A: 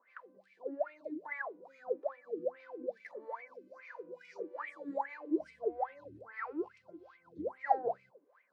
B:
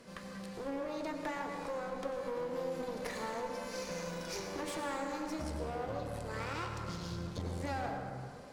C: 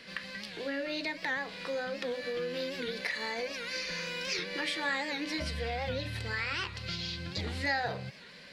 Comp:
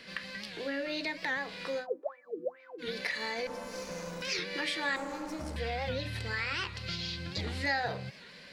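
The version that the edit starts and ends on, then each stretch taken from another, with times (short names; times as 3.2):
C
1.82–2.83 from A, crossfade 0.10 s
3.47–4.22 from B
4.96–5.56 from B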